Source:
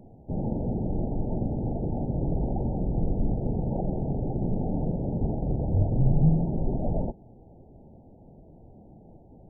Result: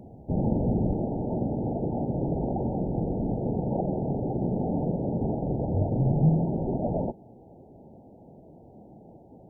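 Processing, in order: high-pass 50 Hz 6 dB/octave, from 0.94 s 210 Hz; trim +4.5 dB

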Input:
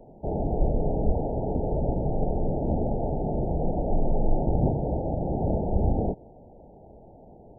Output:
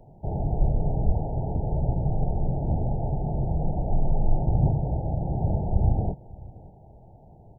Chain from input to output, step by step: graphic EQ 125/250/500 Hz +6/-8/-8 dB; delay 575 ms -21.5 dB; trim +1.5 dB

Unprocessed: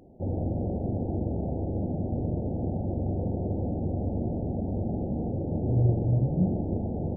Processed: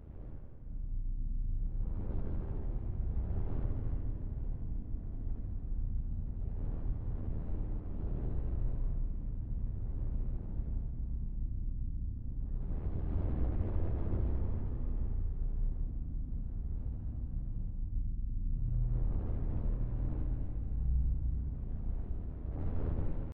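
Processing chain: fade out at the end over 0.58 s; wind noise 340 Hz -27 dBFS; peaking EQ 450 Hz -13 dB 1.2 oct; level rider gain up to 4 dB; peak limiter -15.5 dBFS, peak gain reduction 10.5 dB; pitch shift +1.5 st; AM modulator 260 Hz, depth 50%; wide varispeed 0.307×; spring tank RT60 2.8 s, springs 33/56 ms, chirp 20 ms, DRR 3 dB; trim -7.5 dB

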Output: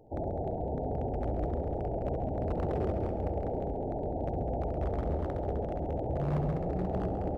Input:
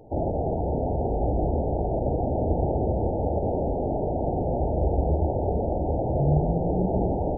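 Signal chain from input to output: 2.17–2.90 s: peaking EQ 410 Hz -4.5 dB -> +6.5 dB 0.6 oct; wavefolder -16.5 dBFS; on a send: multi-head delay 68 ms, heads all three, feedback 51%, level -13 dB; on the sum: trim -8.5 dB

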